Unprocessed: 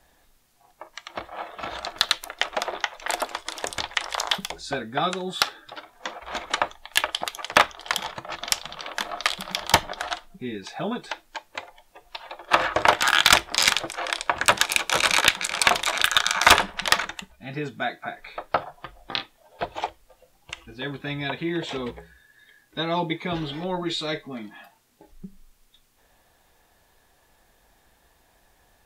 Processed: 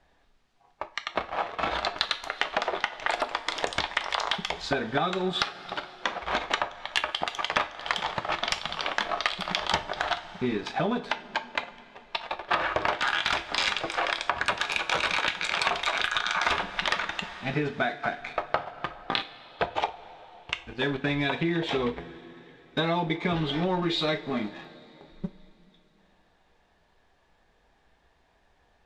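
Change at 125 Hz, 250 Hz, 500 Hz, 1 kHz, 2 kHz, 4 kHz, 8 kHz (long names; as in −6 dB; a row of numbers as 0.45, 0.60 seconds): +1.5, +1.5, −0.5, −3.0, −4.0, −5.5, −14.0 decibels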